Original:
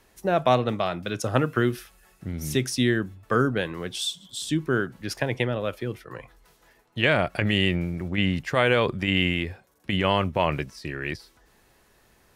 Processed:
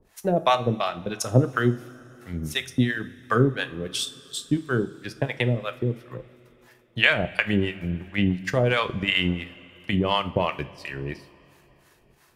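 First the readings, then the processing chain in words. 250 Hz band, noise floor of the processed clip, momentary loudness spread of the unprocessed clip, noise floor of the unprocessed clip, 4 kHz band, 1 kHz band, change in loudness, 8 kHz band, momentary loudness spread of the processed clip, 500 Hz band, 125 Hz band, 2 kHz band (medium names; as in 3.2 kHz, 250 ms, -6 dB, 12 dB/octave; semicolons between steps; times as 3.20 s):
+0.5 dB, -59 dBFS, 12 LU, -61 dBFS, 0.0 dB, 0.0 dB, 0.0 dB, -0.5 dB, 13 LU, -1.0 dB, +1.5 dB, +1.0 dB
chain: harmonic tremolo 2.9 Hz, depth 100%, crossover 650 Hz; transient shaper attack +3 dB, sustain -10 dB; two-slope reverb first 0.37 s, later 3.5 s, from -18 dB, DRR 10 dB; trim +3.5 dB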